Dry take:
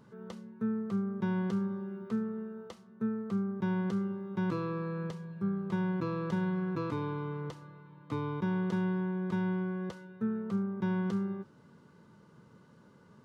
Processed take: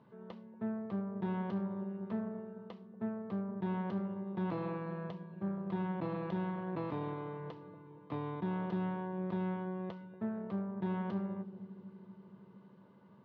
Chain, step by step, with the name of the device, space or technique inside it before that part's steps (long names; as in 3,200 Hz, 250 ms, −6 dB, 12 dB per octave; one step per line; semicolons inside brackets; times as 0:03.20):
analogue delay pedal into a guitar amplifier (bucket-brigade delay 235 ms, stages 1,024, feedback 74%, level −14 dB; tube saturation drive 28 dB, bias 0.75; loudspeaker in its box 110–3,700 Hz, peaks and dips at 660 Hz +5 dB, 970 Hz +5 dB, 1,400 Hz −5 dB)